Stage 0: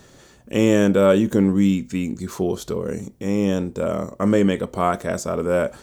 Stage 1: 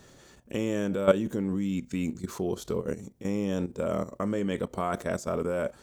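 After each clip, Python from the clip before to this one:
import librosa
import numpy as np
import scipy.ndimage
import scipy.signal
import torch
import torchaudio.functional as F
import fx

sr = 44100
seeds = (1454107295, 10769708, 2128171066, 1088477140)

y = fx.level_steps(x, sr, step_db=13)
y = y * 10.0 ** (-2.5 / 20.0)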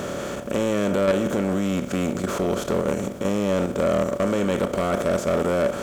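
y = fx.bin_compress(x, sr, power=0.4)
y = 10.0 ** (-18.0 / 20.0) * np.tanh(y / 10.0 ** (-18.0 / 20.0))
y = y * 10.0 ** (3.5 / 20.0)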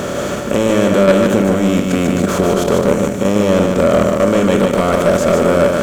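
y = x + 10.0 ** (-4.0 / 20.0) * np.pad(x, (int(149 * sr / 1000.0), 0))[:len(x)]
y = y * 10.0 ** (8.5 / 20.0)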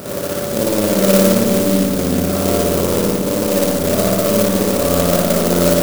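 y = fx.rev_spring(x, sr, rt60_s=1.2, pass_ms=(57,), chirp_ms=60, drr_db=-7.5)
y = fx.clock_jitter(y, sr, seeds[0], jitter_ms=0.12)
y = y * 10.0 ** (-10.5 / 20.0)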